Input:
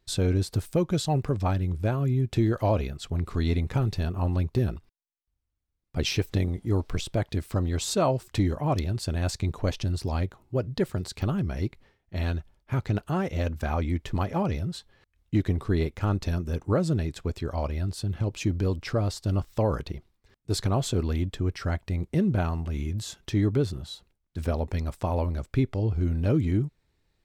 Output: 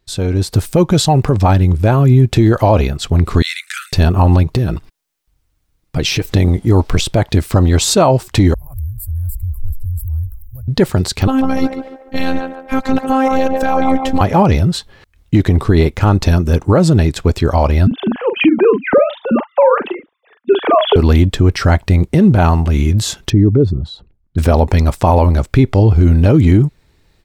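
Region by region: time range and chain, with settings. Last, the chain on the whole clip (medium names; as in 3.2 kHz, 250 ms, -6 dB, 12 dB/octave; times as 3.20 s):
3.42–3.93 s: steep high-pass 1.4 kHz 72 dB/octave + peaking EQ 8.5 kHz +11.5 dB 0.43 oct
4.43–6.25 s: comb 6.4 ms, depth 31% + compression 3:1, threshold -31 dBFS
8.54–10.68 s: inverse Chebyshev band-stop 150–6900 Hz, stop band 50 dB + peaking EQ 7.5 kHz +10.5 dB 0.2 oct + level flattener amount 50%
11.27–14.21 s: robot voice 264 Hz + band-passed feedback delay 144 ms, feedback 52%, band-pass 770 Hz, level -4 dB
17.87–20.96 s: formants replaced by sine waves + doubling 43 ms -8 dB
23.30–24.38 s: resonances exaggerated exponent 1.5 + low-pass 1.4 kHz 6 dB/octave
whole clip: dynamic bell 850 Hz, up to +5 dB, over -46 dBFS, Q 2.9; level rider gain up to 14 dB; loudness maximiser +6.5 dB; trim -1 dB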